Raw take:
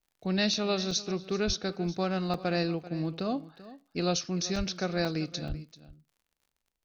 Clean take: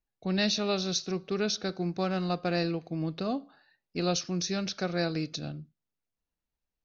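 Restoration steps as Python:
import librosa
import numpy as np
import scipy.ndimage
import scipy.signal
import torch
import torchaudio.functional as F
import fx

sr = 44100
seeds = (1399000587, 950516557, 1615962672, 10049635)

y = fx.fix_declick_ar(x, sr, threshold=6.5)
y = fx.highpass(y, sr, hz=140.0, slope=24, at=(1.46, 1.58), fade=0.02)
y = fx.highpass(y, sr, hz=140.0, slope=24, at=(4.57, 4.69), fade=0.02)
y = fx.highpass(y, sr, hz=140.0, slope=24, at=(5.48, 5.6), fade=0.02)
y = fx.fix_interpolate(y, sr, at_s=(0.54, 0.91, 2.34, 4.56, 5.05, 5.48), length_ms=2.9)
y = fx.fix_echo_inverse(y, sr, delay_ms=388, level_db=-17.0)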